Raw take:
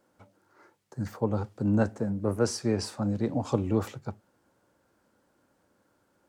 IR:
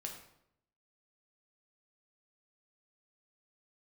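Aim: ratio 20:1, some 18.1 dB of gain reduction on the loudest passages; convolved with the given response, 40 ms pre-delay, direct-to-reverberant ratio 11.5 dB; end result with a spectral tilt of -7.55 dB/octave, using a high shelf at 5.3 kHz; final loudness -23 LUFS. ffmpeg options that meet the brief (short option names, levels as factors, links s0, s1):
-filter_complex "[0:a]highshelf=f=5300:g=-4,acompressor=threshold=0.0141:ratio=20,asplit=2[s0][s1];[1:a]atrim=start_sample=2205,adelay=40[s2];[s1][s2]afir=irnorm=-1:irlink=0,volume=0.335[s3];[s0][s3]amix=inputs=2:normalize=0,volume=10.6"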